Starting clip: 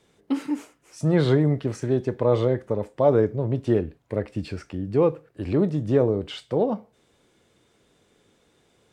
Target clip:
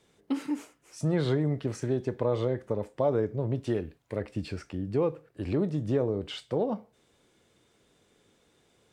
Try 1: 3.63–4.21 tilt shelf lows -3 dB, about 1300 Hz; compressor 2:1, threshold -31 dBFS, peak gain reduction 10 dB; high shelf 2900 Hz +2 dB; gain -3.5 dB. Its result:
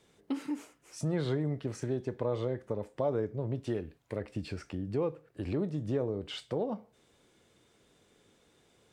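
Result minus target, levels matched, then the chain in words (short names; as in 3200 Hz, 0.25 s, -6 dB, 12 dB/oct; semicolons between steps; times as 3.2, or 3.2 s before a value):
compressor: peak gain reduction +5 dB
3.63–4.21 tilt shelf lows -3 dB, about 1300 Hz; compressor 2:1, threshold -21.5 dBFS, peak gain reduction 5 dB; high shelf 2900 Hz +2 dB; gain -3.5 dB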